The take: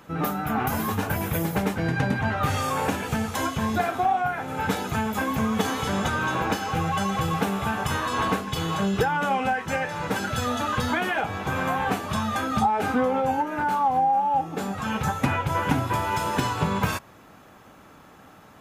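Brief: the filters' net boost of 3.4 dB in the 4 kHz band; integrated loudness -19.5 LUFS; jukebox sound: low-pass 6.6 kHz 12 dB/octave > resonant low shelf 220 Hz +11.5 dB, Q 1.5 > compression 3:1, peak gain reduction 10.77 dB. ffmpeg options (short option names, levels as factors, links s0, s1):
-af "lowpass=6600,lowshelf=f=220:t=q:w=1.5:g=11.5,equalizer=f=4000:t=o:g=5,acompressor=threshold=0.0891:ratio=3,volume=1.78"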